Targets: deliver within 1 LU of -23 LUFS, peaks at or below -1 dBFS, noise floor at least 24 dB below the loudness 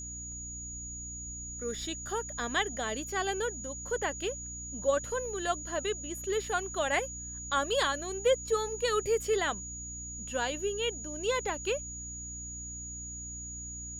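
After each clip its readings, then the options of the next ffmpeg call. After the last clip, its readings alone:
hum 60 Hz; highest harmonic 300 Hz; hum level -44 dBFS; steady tone 6.8 kHz; tone level -40 dBFS; loudness -33.0 LUFS; peak level -15.5 dBFS; loudness target -23.0 LUFS
-> -af "bandreject=f=60:t=h:w=4,bandreject=f=120:t=h:w=4,bandreject=f=180:t=h:w=4,bandreject=f=240:t=h:w=4,bandreject=f=300:t=h:w=4"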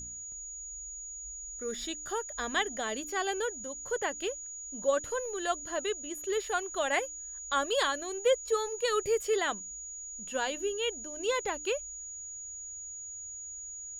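hum not found; steady tone 6.8 kHz; tone level -40 dBFS
-> -af "bandreject=f=6800:w=30"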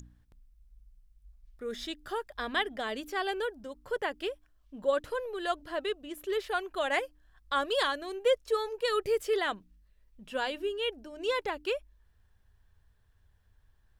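steady tone not found; loudness -32.5 LUFS; peak level -16.0 dBFS; loudness target -23.0 LUFS
-> -af "volume=2.99"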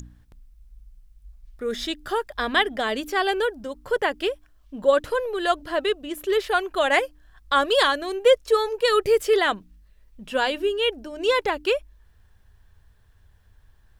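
loudness -23.0 LUFS; peak level -6.5 dBFS; noise floor -57 dBFS

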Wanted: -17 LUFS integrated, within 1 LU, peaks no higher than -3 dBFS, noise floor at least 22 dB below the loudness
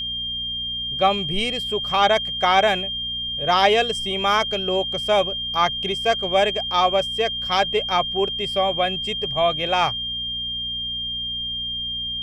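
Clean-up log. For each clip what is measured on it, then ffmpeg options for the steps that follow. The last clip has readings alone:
hum 60 Hz; highest harmonic 240 Hz; hum level -40 dBFS; steady tone 3.2 kHz; tone level -25 dBFS; loudness -21.0 LUFS; peak level -5.0 dBFS; loudness target -17.0 LUFS
-> -af "bandreject=f=60:t=h:w=4,bandreject=f=120:t=h:w=4,bandreject=f=180:t=h:w=4,bandreject=f=240:t=h:w=4"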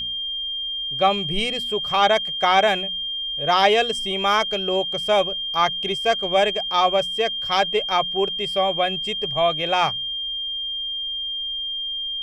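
hum not found; steady tone 3.2 kHz; tone level -25 dBFS
-> -af "bandreject=f=3200:w=30"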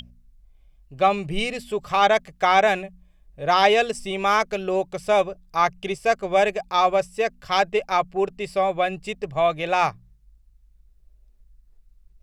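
steady tone not found; loudness -22.0 LUFS; peak level -5.5 dBFS; loudness target -17.0 LUFS
-> -af "volume=1.78,alimiter=limit=0.708:level=0:latency=1"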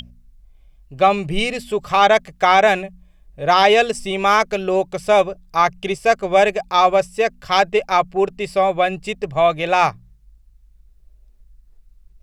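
loudness -17.5 LUFS; peak level -3.0 dBFS; noise floor -52 dBFS

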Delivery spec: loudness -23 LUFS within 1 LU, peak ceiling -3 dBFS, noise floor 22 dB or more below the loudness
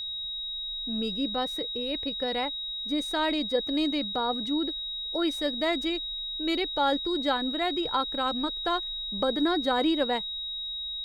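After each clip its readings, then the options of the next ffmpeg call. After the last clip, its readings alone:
steady tone 3.8 kHz; tone level -32 dBFS; loudness -28.5 LUFS; peak level -14.0 dBFS; loudness target -23.0 LUFS
-> -af "bandreject=f=3800:w=30"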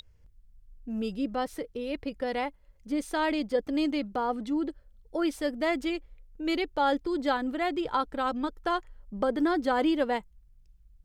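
steady tone not found; loudness -30.0 LUFS; peak level -15.0 dBFS; loudness target -23.0 LUFS
-> -af "volume=2.24"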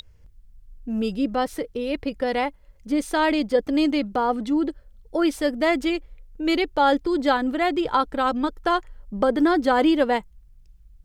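loudness -23.0 LUFS; peak level -8.0 dBFS; noise floor -53 dBFS

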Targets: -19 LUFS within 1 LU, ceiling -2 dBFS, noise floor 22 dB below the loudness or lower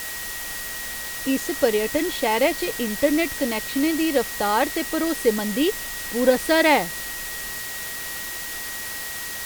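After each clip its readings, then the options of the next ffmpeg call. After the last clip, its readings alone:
steady tone 1.9 kHz; tone level -35 dBFS; noise floor -32 dBFS; noise floor target -45 dBFS; loudness -23.0 LUFS; peak level -4.5 dBFS; loudness target -19.0 LUFS
-> -af "bandreject=f=1900:w=30"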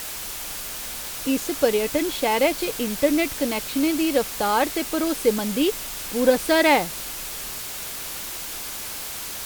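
steady tone not found; noise floor -33 dBFS; noise floor target -46 dBFS
-> -af "afftdn=nr=13:nf=-33"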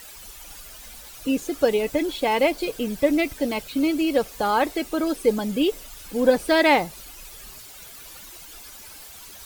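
noise floor -43 dBFS; noise floor target -45 dBFS
-> -af "afftdn=nr=6:nf=-43"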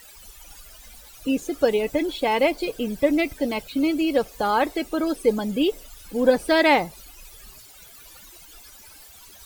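noise floor -47 dBFS; loudness -23.0 LUFS; peak level -5.0 dBFS; loudness target -19.0 LUFS
-> -af "volume=1.58,alimiter=limit=0.794:level=0:latency=1"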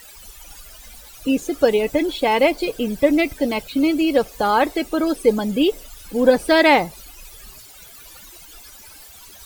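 loudness -19.0 LUFS; peak level -2.0 dBFS; noise floor -43 dBFS

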